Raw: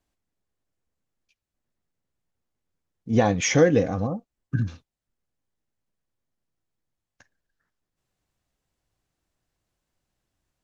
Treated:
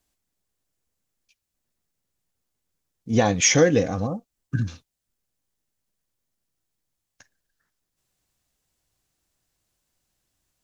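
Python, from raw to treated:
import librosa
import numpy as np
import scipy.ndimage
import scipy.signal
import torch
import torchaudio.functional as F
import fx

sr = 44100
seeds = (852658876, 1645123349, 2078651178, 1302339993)

y = fx.high_shelf(x, sr, hz=3600.0, db=11.0)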